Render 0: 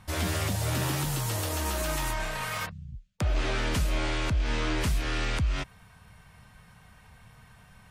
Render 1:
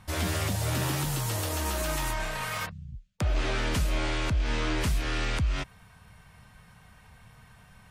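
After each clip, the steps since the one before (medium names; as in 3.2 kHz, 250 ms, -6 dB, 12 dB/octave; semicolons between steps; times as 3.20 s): no audible change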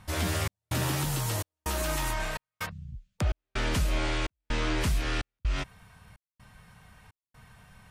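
trance gate "xxxxxx...xxx" 190 bpm -60 dB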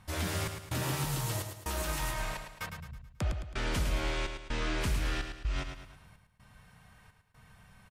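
feedback delay 108 ms, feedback 43%, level -7 dB; trim -4.5 dB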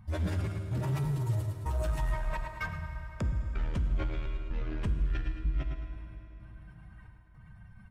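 spectral contrast enhancement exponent 1.9; saturation -31.5 dBFS, distortion -14 dB; reverberation RT60 4.3 s, pre-delay 5 ms, DRR 7 dB; trim +5.5 dB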